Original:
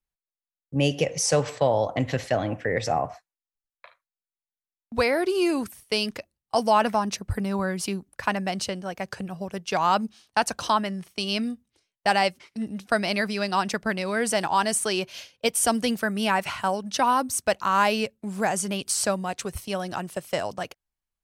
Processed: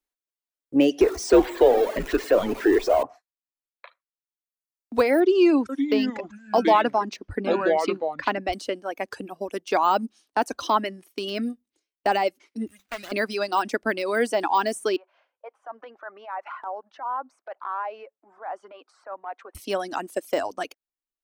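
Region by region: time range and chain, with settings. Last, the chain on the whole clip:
1.01–3.03 s: jump at every zero crossing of -23.5 dBFS + frequency shift -95 Hz
5.20–8.53 s: low-pass 4.2 kHz + ever faster or slower copies 490 ms, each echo -5 st, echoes 2, each echo -6 dB
12.67–13.12 s: median filter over 41 samples + FFT filter 120 Hz 0 dB, 310 Hz -19 dB, 2.2 kHz +11 dB
14.96–19.55 s: compression 10:1, threshold -25 dBFS + Butterworth band-pass 970 Hz, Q 1.2 + transient shaper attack -8 dB, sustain +1 dB
whole clip: reverb removal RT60 1.4 s; de-esser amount 90%; resonant low shelf 210 Hz -10.5 dB, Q 3; trim +2.5 dB

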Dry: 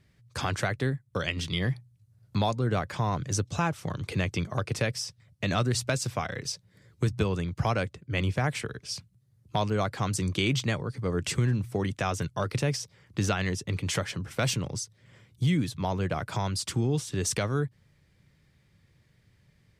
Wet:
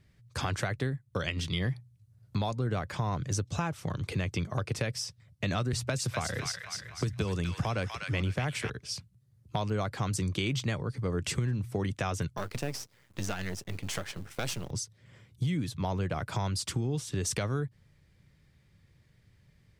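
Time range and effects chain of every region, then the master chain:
5.73–8.70 s: feedback echo behind a high-pass 248 ms, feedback 43%, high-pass 1.5 kHz, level -4 dB + three bands compressed up and down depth 40%
12.37–14.71 s: partial rectifier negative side -12 dB + bass shelf 200 Hz -7 dB + companded quantiser 6-bit
whole clip: bass shelf 77 Hz +6.5 dB; compression, threshold -25 dBFS; trim -1.5 dB

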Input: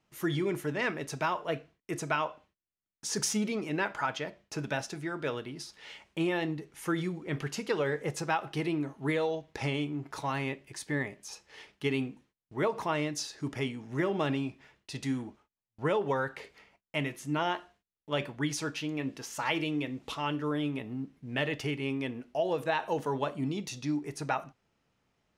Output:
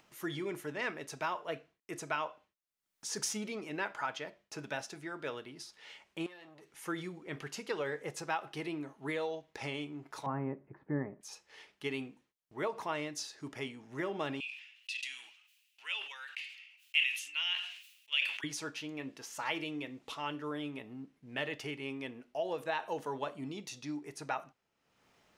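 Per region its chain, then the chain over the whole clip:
6.26–6.72 s: tilt EQ +1.5 dB/octave + compression 5:1, threshold -42 dBFS + transformer saturation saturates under 1.4 kHz
10.26–11.21 s: low-pass 1.4 kHz 24 dB/octave + peaking EQ 170 Hz +10.5 dB 2.2 oct
14.40–18.44 s: resonant high-pass 2.7 kHz, resonance Q 6.1 + decay stretcher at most 74 dB/s
whole clip: upward compressor, threshold -48 dBFS; bass shelf 210 Hz -11 dB; trim -4.5 dB

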